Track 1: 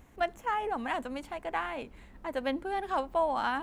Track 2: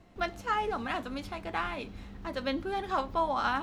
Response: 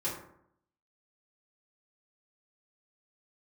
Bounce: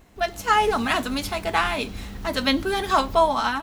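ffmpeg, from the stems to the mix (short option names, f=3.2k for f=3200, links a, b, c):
-filter_complex "[0:a]volume=2dB[a];[1:a]dynaudnorm=f=110:g=7:m=10dB,crystalizer=i=3:c=0,adelay=1.4,volume=-1dB[b];[a][b]amix=inputs=2:normalize=0"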